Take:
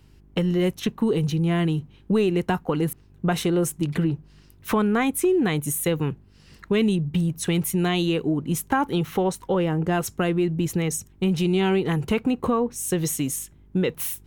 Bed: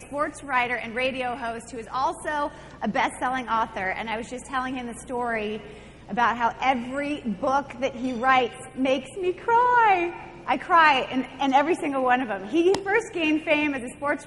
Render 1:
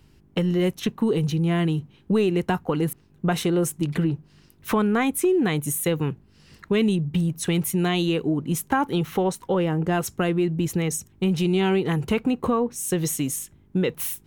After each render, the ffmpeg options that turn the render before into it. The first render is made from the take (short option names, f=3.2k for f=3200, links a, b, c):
-af "bandreject=f=50:t=h:w=4,bandreject=f=100:t=h:w=4"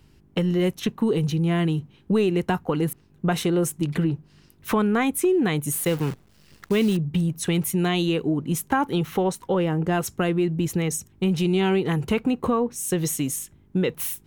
-filter_complex "[0:a]asettb=1/sr,asplit=3[a][b][c];[a]atrim=end=5.724[d];[b]atrim=start=5.72:end=6.97,asetpts=PTS-STARTPTS,afade=t=in:d=0.004:c=qsin,afade=t=out:st=1.246:d=0.004:c=qsin,acrusher=bits=7:dc=4:mix=0:aa=0.000001[e];[c]atrim=start=6.966[f];[d][e]acrossfade=d=0.004:c1=hsin:c2=qsin[g];[g][f]acrossfade=d=0.004:c1=qsin:c2=hsin"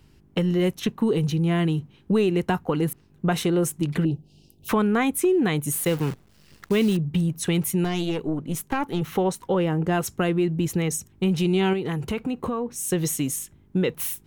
-filter_complex "[0:a]asettb=1/sr,asplit=3[a][b][c];[a]atrim=end=4.054[d];[b]atrim=start=4.05:end=4.69,asetpts=PTS-STARTPTS,afade=t=in:d=0.004:c=qsin,afade=t=out:st=0.636:d=0.004:c=qsin,asuperstop=centerf=1500:order=12:qfactor=0.83[e];[c]atrim=start=4.686[f];[d][e]acrossfade=d=0.004:c1=hsin:c2=qsin[g];[g][f]acrossfade=d=0.004:c1=qsin:c2=hsin,asettb=1/sr,asplit=3[h][i][j];[h]atrim=end=7.844[k];[i]atrim=start=7.84:end=9.02,asetpts=PTS-STARTPTS,afade=t=in:d=0.004:c=qsin,afade=t=out:st=1.176:d=0.004:c=qsin,aeval=exprs='(tanh(6.31*val(0)+0.6)-tanh(0.6))/6.31':c=same[l];[j]atrim=start=9.016[m];[k][l]acrossfade=d=0.004:c1=hsin:c2=qsin[n];[n][m]acrossfade=d=0.004:c1=qsin:c2=hsin,asettb=1/sr,asplit=3[o][p][q];[o]atrim=end=11.734[r];[p]atrim=start=11.73:end=12.76,asetpts=PTS-STARTPTS,afade=t=in:d=0.004:c=qsin,afade=t=out:st=1.026:d=0.004:c=qsin,acompressor=threshold=-25dB:ratio=2.5:attack=3.2:release=140:knee=1:detection=peak[s];[q]atrim=start=12.756[t];[r][s]acrossfade=d=0.004:c1=hsin:c2=qsin[u];[u][t]acrossfade=d=0.004:c1=qsin:c2=hsin"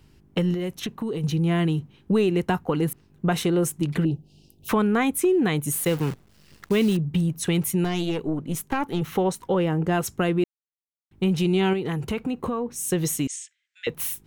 -filter_complex "[0:a]asettb=1/sr,asplit=3[a][b][c];[a]atrim=end=0.544[d];[b]atrim=start=0.54:end=1.24,asetpts=PTS-STARTPTS,afade=t=in:d=0.004:c=qsin,afade=t=out:st=0.696:d=0.004:c=qsin,acompressor=threshold=-25dB:ratio=5:attack=3.2:release=140:knee=1:detection=peak[e];[c]atrim=start=1.236[f];[d][e]acrossfade=d=0.004:c1=hsin:c2=qsin[g];[g][f]acrossfade=d=0.004:c1=qsin:c2=hsin,asettb=1/sr,asplit=3[h][i][j];[h]atrim=end=13.274[k];[i]atrim=start=13.27:end=13.87,asetpts=PTS-STARTPTS,afade=t=in:d=0.004:c=qsin,afade=t=out:st=0.596:d=0.004:c=qsin,asuperpass=centerf=3900:order=12:qfactor=0.59[l];[j]atrim=start=13.866[m];[k][l]acrossfade=d=0.004:c1=hsin:c2=qsin[n];[n][m]acrossfade=d=0.004:c1=qsin:c2=hsin,asplit=3[o][p][q];[o]atrim=end=10.44,asetpts=PTS-STARTPTS,afade=t=out:st=10.436:d=0.004:c=hsin[r];[p]atrim=start=10.44:end=11.11,asetpts=PTS-STARTPTS,volume=0[s];[q]atrim=start=11.11,asetpts=PTS-STARTPTS,afade=t=in:d=0.004:c=hsin[t];[r][s][t]concat=n=3:v=0:a=1"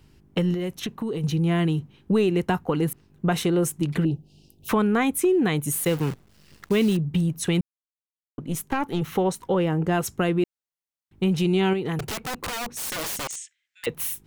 -filter_complex "[0:a]asettb=1/sr,asplit=3[a][b][c];[a]atrim=end=11.994[d];[b]atrim=start=11.99:end=13.86,asetpts=PTS-STARTPTS,afade=t=in:d=0.004:c=qsin,afade=t=out:st=1.866:d=0.004:c=qsin,aeval=exprs='(mod(17.8*val(0)+1,2)-1)/17.8':c=same[e];[c]atrim=start=13.856[f];[d][e]acrossfade=d=0.004:c1=hsin:c2=qsin[g];[g][f]acrossfade=d=0.004:c1=qsin:c2=hsin,asplit=3[h][i][j];[h]atrim=end=7.61,asetpts=PTS-STARTPTS,afade=t=out:st=7.606:d=0.004:c=hsin[k];[i]atrim=start=7.61:end=8.38,asetpts=PTS-STARTPTS,volume=0[l];[j]atrim=start=8.38,asetpts=PTS-STARTPTS,afade=t=in:d=0.004:c=hsin[m];[k][l][m]concat=n=3:v=0:a=1"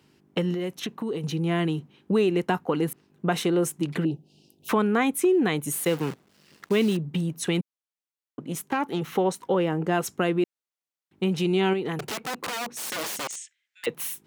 -af "highpass=200,highshelf=f=8.6k:g=-4.5"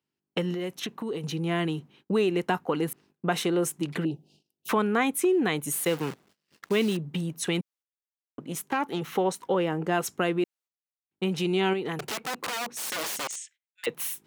-af "agate=range=-24dB:threshold=-54dB:ratio=16:detection=peak,lowshelf=f=390:g=-4.5"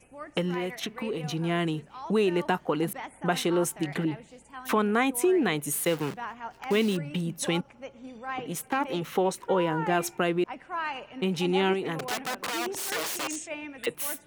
-filter_complex "[1:a]volume=-15.5dB[a];[0:a][a]amix=inputs=2:normalize=0"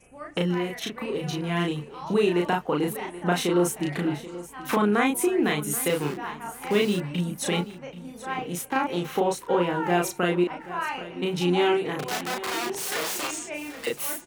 -filter_complex "[0:a]asplit=2[a][b];[b]adelay=34,volume=-2dB[c];[a][c]amix=inputs=2:normalize=0,aecho=1:1:781|1562|2343:0.158|0.0444|0.0124"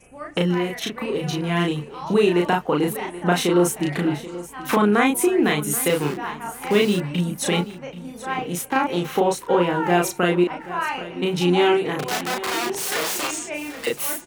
-af "volume=4.5dB"